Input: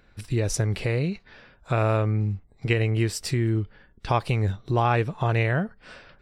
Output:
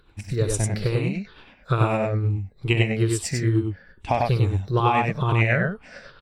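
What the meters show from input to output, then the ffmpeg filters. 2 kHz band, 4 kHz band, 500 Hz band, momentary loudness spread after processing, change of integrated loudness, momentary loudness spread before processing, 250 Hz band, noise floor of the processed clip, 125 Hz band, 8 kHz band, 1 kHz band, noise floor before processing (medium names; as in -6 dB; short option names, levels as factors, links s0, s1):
+3.5 dB, +2.0 dB, +1.5 dB, 9 LU, +2.0 dB, 8 LU, +2.5 dB, -55 dBFS, +2.0 dB, +3.5 dB, +3.0 dB, -58 dBFS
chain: -af "afftfilt=real='re*pow(10,13/40*sin(2*PI*(0.62*log(max(b,1)*sr/1024/100)/log(2)-(-2.3)*(pts-256)/sr)))':imag='im*pow(10,13/40*sin(2*PI*(0.62*log(max(b,1)*sr/1024/100)/log(2)-(-2.3)*(pts-256)/sr)))':win_size=1024:overlap=0.75,aecho=1:1:64.14|96.21:0.282|0.708,tremolo=f=9.2:d=0.39"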